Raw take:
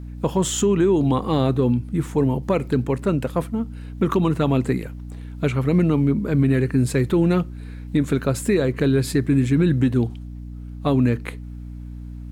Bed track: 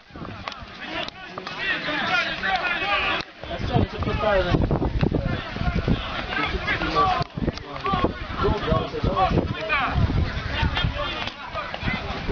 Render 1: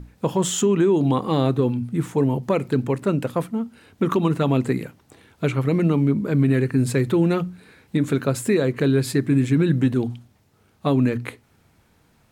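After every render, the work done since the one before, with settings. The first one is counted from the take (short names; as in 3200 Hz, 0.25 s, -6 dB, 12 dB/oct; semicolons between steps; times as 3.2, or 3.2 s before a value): notches 60/120/180/240/300 Hz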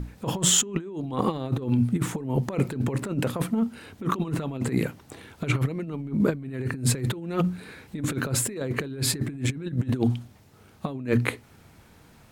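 negative-ratio compressor -25 dBFS, ratio -0.5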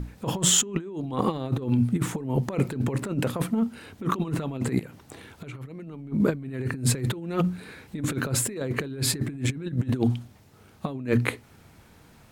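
4.79–6.12 compressor 10:1, threshold -35 dBFS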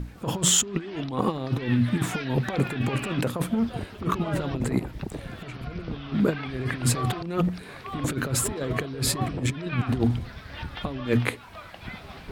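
add bed track -13 dB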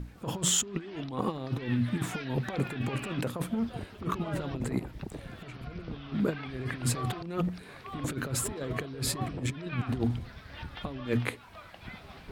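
gain -6 dB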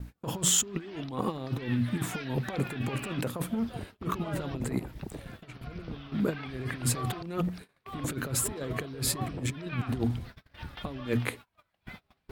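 gate -43 dBFS, range -29 dB; high shelf 11000 Hz +9.5 dB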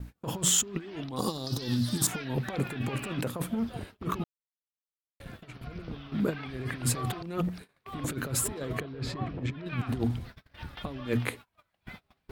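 1.16–2.07 resonant high shelf 3400 Hz +13.5 dB, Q 3; 4.24–5.2 mute; 8.8–9.66 air absorption 200 m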